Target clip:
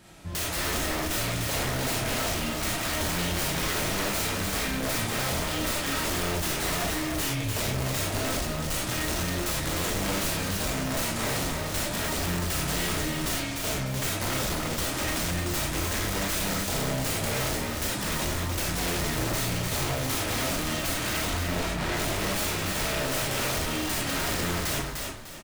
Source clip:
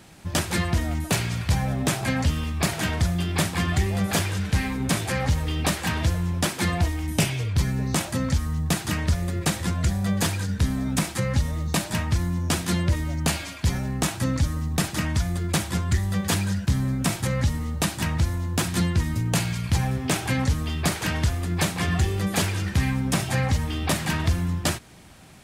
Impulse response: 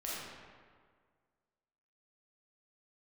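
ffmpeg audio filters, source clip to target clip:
-filter_complex "[0:a]aeval=exprs='(mod(8.91*val(0)+1,2)-1)/8.91':c=same,asettb=1/sr,asplit=3[a][b][c];[a]atrim=end=21.254[d];[b]atrim=start=21.25:end=21.94,asetpts=PTS-STARTPTS,afade=t=in:d=0.004:c=qsin,afade=t=out:st=0.686:d=0.004:c=qsin,lowpass=f=2.4k:p=1[e];[c]atrim=start=21.936[f];[d][e]acrossfade=d=0.004:c1=hsin:c2=qsin[g];[g][f]acrossfade=d=0.004:c1=qsin:c2=hsin[h];[1:a]atrim=start_sample=2205,atrim=end_sample=4410[i];[h][i]afir=irnorm=-1:irlink=0,asoftclip=type=hard:threshold=-27dB,asplit=5[j][k][l][m][n];[k]adelay=300,afreqshift=-34,volume=-4dB[o];[l]adelay=600,afreqshift=-68,volume=-13.6dB[p];[m]adelay=900,afreqshift=-102,volume=-23.3dB[q];[n]adelay=1200,afreqshift=-136,volume=-32.9dB[r];[j][o][p][q][r]amix=inputs=5:normalize=0"

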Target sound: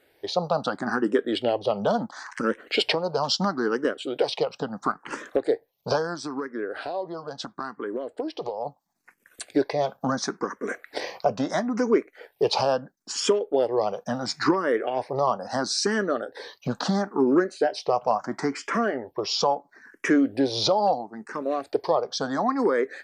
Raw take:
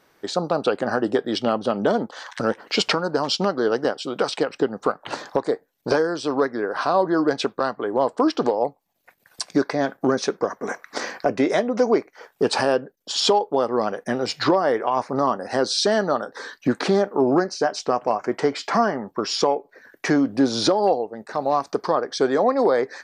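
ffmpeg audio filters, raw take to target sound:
-filter_complex "[0:a]asplit=3[a][b][c];[a]afade=t=out:st=6.14:d=0.02[d];[b]acompressor=threshold=-26dB:ratio=4,afade=t=in:st=6.14:d=0.02,afade=t=out:st=8.65:d=0.02[e];[c]afade=t=in:st=8.65:d=0.02[f];[d][e][f]amix=inputs=3:normalize=0,asplit=2[g][h];[h]afreqshift=0.74[i];[g][i]amix=inputs=2:normalize=1"

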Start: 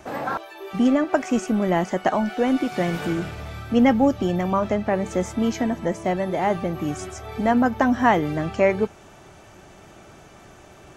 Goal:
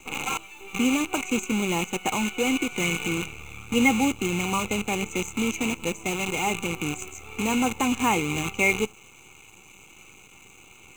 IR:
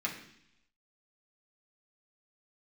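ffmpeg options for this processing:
-filter_complex "[0:a]asplit=2[a][b];[1:a]atrim=start_sample=2205,afade=t=out:st=0.17:d=0.01,atrim=end_sample=7938[c];[b][c]afir=irnorm=-1:irlink=0,volume=-24.5dB[d];[a][d]amix=inputs=2:normalize=0,acrusher=bits=5:dc=4:mix=0:aa=0.000001,superequalizer=8b=0.282:11b=0.282:12b=3.98:14b=0.355:15b=2.82,volume=-4.5dB"

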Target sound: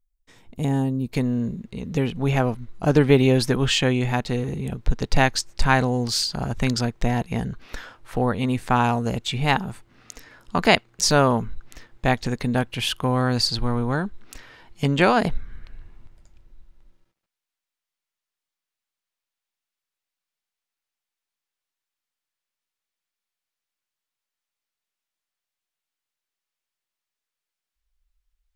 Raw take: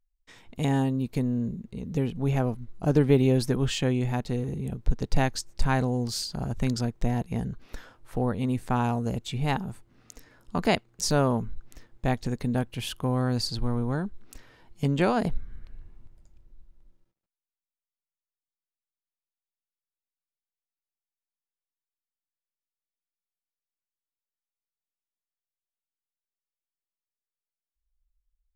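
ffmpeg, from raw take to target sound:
-af "asetnsamples=n=441:p=0,asendcmd='1.12 equalizer g 8',equalizer=f=2.3k:w=0.33:g=-6,volume=3dB"

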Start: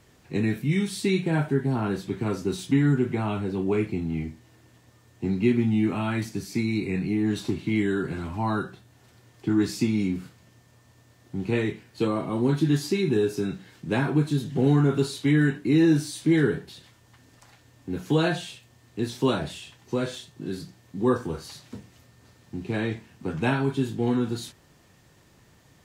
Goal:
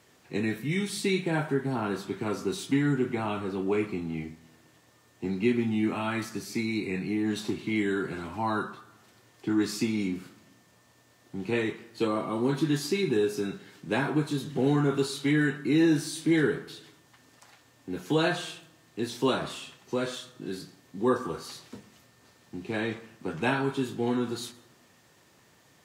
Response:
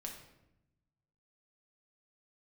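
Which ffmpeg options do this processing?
-filter_complex "[0:a]highpass=f=310:p=1,asplit=2[a][b];[b]equalizer=f=1.2k:w=2.6:g=14.5[c];[1:a]atrim=start_sample=2205,adelay=111[d];[c][d]afir=irnorm=-1:irlink=0,volume=-17.5dB[e];[a][e]amix=inputs=2:normalize=0"

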